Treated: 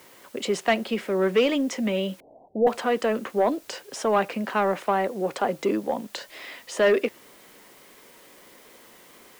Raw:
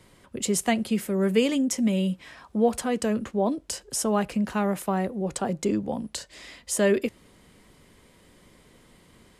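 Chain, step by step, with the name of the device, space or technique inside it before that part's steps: tape answering machine (BPF 390–3100 Hz; soft clip -19.5 dBFS, distortion -16 dB; wow and flutter; white noise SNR 28 dB); 2.2–2.67 steep low-pass 780 Hz 72 dB/oct; gain +7 dB

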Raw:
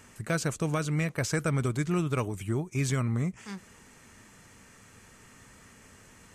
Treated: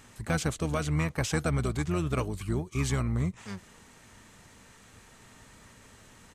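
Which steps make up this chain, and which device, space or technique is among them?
octave pedal (harmoniser -12 st -5 dB); gain -1 dB

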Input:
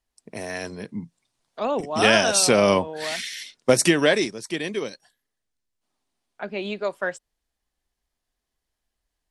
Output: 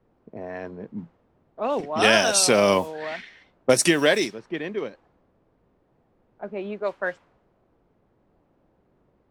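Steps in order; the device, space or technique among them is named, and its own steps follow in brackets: low shelf 170 Hz -5.5 dB; cassette deck with a dynamic noise filter (white noise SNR 23 dB; low-pass opened by the level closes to 430 Hz, open at -17 dBFS)

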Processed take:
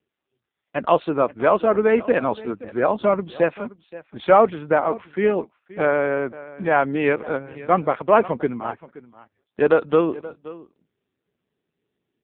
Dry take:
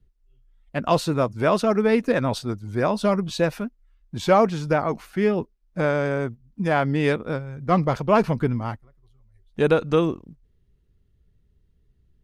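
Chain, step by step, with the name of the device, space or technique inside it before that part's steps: 7.66–8.61 HPF 86 Hz 6 dB/oct; satellite phone (BPF 310–3300 Hz; echo 0.525 s -18.5 dB; gain +4.5 dB; AMR-NB 5.9 kbps 8000 Hz)

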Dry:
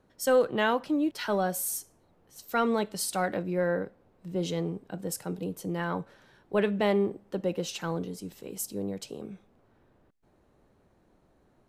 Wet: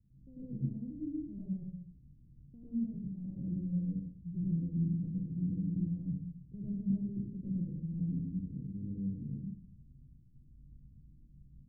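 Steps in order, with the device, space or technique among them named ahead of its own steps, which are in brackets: club heard from the street (limiter -25.5 dBFS, peak gain reduction 12 dB; LPF 170 Hz 24 dB/oct; reverb RT60 0.60 s, pre-delay 94 ms, DRR -6.5 dB); gain +2 dB

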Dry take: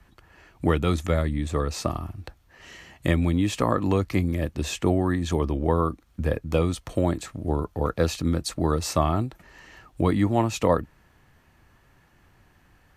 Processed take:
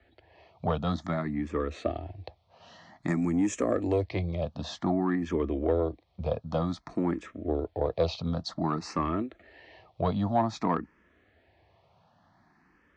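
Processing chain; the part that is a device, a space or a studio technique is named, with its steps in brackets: barber-pole phaser into a guitar amplifier (endless phaser +0.53 Hz; soft clip -16 dBFS, distortion -20 dB; speaker cabinet 98–4600 Hz, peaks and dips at 130 Hz -7 dB, 670 Hz +7 dB, 1500 Hz -4 dB, 2800 Hz -5 dB); 3.08–4.03 resonant high shelf 5000 Hz +12 dB, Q 3

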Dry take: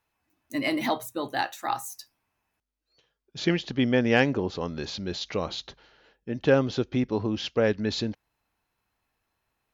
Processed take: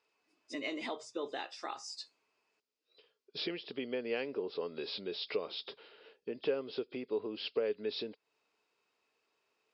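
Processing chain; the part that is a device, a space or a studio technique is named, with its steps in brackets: hearing aid with frequency lowering (nonlinear frequency compression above 3200 Hz 1.5:1; compressor 3:1, threshold -39 dBFS, peak gain reduction 17 dB; speaker cabinet 330–6700 Hz, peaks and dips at 430 Hz +10 dB, 800 Hz -5 dB, 1700 Hz -5 dB, 2600 Hz +4 dB, 4900 Hz +7 dB)

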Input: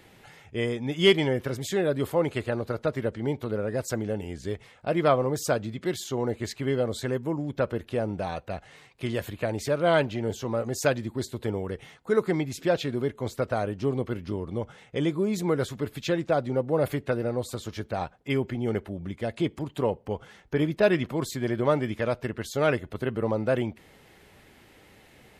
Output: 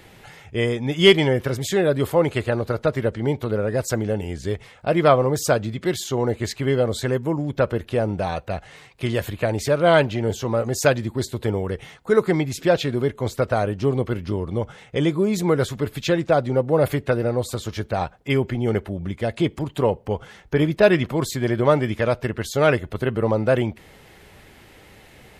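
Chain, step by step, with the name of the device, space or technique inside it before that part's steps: low shelf boost with a cut just above (low shelf 75 Hz +5 dB; bell 260 Hz -2.5 dB 0.77 oct); gain +6.5 dB

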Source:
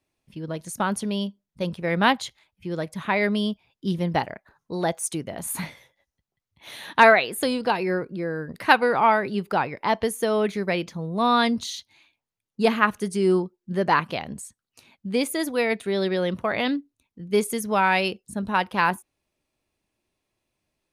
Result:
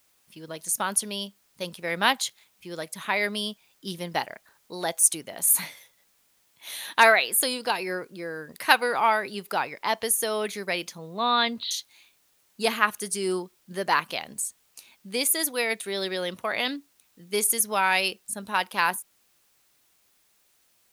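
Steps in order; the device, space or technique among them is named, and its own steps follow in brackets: 10.98–11.71 steep low-pass 4300 Hz 72 dB/oct; turntable without a phono preamp (RIAA curve recording; white noise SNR 38 dB); gain -3 dB

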